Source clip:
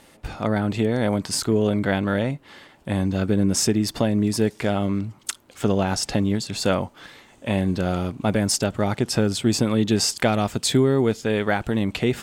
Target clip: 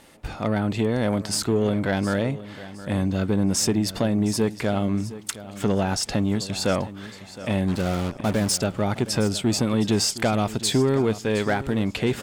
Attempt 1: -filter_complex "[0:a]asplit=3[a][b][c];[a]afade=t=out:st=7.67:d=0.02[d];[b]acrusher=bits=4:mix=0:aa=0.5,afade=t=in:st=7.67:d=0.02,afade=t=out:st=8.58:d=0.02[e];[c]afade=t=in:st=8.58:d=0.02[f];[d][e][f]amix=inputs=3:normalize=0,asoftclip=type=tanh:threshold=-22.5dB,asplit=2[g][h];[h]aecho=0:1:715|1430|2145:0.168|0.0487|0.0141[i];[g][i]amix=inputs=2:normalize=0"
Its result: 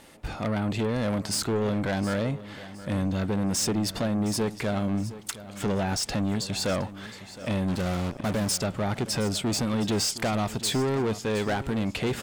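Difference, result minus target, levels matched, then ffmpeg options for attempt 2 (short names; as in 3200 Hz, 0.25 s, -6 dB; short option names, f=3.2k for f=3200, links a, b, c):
soft clip: distortion +10 dB
-filter_complex "[0:a]asplit=3[a][b][c];[a]afade=t=out:st=7.67:d=0.02[d];[b]acrusher=bits=4:mix=0:aa=0.5,afade=t=in:st=7.67:d=0.02,afade=t=out:st=8.58:d=0.02[e];[c]afade=t=in:st=8.58:d=0.02[f];[d][e][f]amix=inputs=3:normalize=0,asoftclip=type=tanh:threshold=-13dB,asplit=2[g][h];[h]aecho=0:1:715|1430|2145:0.168|0.0487|0.0141[i];[g][i]amix=inputs=2:normalize=0"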